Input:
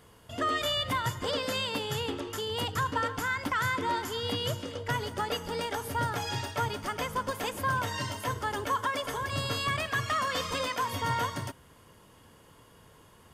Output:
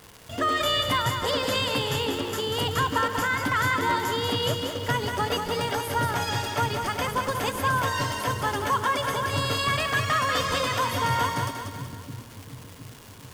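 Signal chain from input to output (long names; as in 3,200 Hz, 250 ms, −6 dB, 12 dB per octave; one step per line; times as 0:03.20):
surface crackle 410 per second −39 dBFS
on a send: echo with a time of its own for lows and highs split 310 Hz, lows 714 ms, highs 189 ms, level −6 dB
on the sum: level +4.5 dB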